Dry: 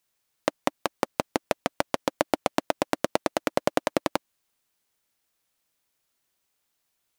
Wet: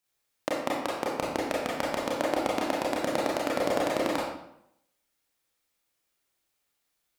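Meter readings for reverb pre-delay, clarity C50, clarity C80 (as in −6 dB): 27 ms, 1.0 dB, 4.0 dB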